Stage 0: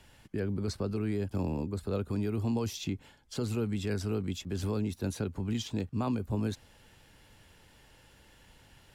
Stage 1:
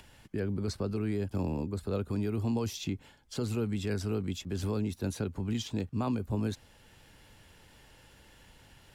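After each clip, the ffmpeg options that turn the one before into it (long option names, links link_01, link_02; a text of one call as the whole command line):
ffmpeg -i in.wav -af "acompressor=mode=upward:threshold=-52dB:ratio=2.5" out.wav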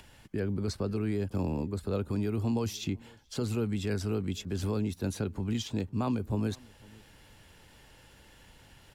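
ffmpeg -i in.wav -filter_complex "[0:a]asplit=2[link_01][link_02];[link_02]adelay=501.5,volume=-25dB,highshelf=frequency=4000:gain=-11.3[link_03];[link_01][link_03]amix=inputs=2:normalize=0,volume=1dB" out.wav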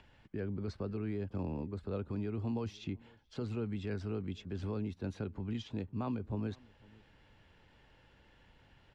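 ffmpeg -i in.wav -af "lowpass=3200,volume=-6.5dB" out.wav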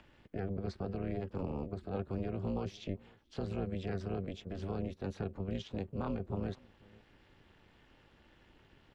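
ffmpeg -i in.wav -af "tremolo=f=290:d=0.947,volume=4dB" out.wav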